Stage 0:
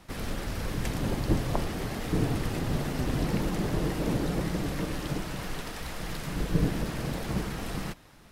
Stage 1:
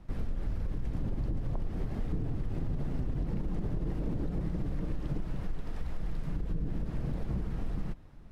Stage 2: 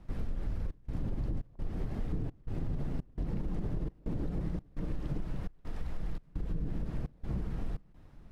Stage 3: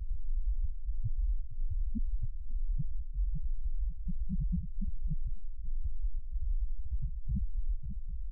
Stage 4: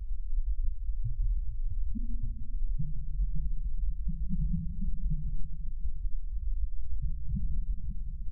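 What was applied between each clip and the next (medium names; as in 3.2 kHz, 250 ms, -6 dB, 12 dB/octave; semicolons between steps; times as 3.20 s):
tilt EQ -3.5 dB/octave; peak limiter -11 dBFS, peak gain reduction 10.5 dB; compression, threshold -20 dBFS, peak gain reduction 6.5 dB; trim -8 dB
trance gate "xxxx.xxx." 85 bpm -24 dB; trim -1.5 dB
loudest bins only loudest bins 1; delay 544 ms -21.5 dB; level flattener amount 70%; trim +6 dB
feedback delay 424 ms, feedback 56%, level -17 dB; reverberation RT60 1.1 s, pre-delay 6 ms, DRR 7.5 dB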